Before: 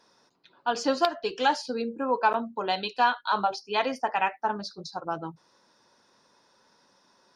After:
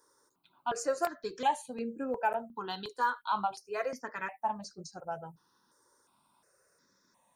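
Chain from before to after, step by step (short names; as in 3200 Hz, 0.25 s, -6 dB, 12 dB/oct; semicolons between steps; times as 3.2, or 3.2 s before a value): EQ curve 880 Hz 0 dB, 5000 Hz -5 dB, 8000 Hz +14 dB; step phaser 2.8 Hz 710–3600 Hz; gain -3.5 dB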